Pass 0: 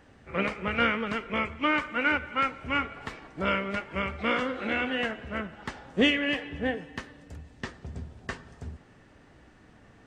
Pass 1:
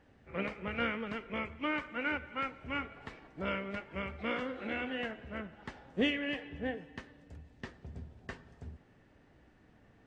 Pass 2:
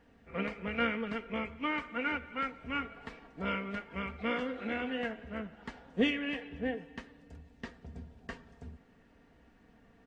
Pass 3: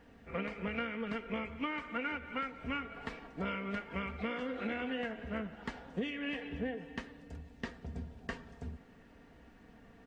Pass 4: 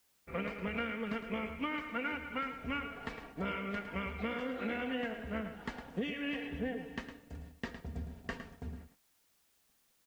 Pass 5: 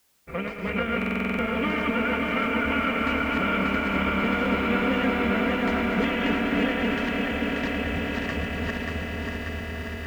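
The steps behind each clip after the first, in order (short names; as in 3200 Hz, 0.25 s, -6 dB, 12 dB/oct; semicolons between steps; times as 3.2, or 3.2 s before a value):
LPF 3500 Hz 6 dB/oct; bell 1200 Hz -3.5 dB 0.68 oct; gain -7 dB
comb 4.3 ms, depth 49%
compressor 16:1, threshold -37 dBFS, peak gain reduction 15 dB; gain +4 dB
gate -52 dBFS, range -32 dB; echo 0.109 s -9.5 dB; added noise white -73 dBFS
regenerating reverse delay 0.293 s, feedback 79%, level -1 dB; swelling echo 0.112 s, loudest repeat 8, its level -12.5 dB; stuck buffer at 0.97, samples 2048, times 8; gain +7 dB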